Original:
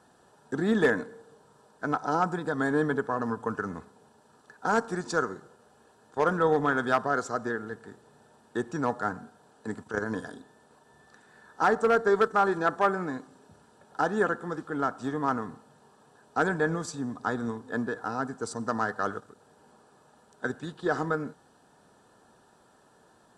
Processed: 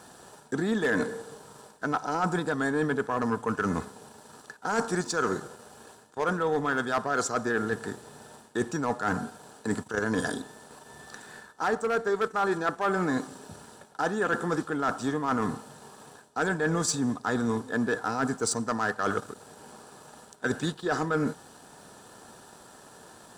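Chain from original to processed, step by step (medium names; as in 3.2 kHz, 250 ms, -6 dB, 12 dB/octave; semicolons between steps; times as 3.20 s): treble shelf 3.8 kHz +8.5 dB; reverse; compression 8:1, threshold -34 dBFS, peak gain reduction 16.5 dB; reverse; waveshaping leveller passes 1; trim +7 dB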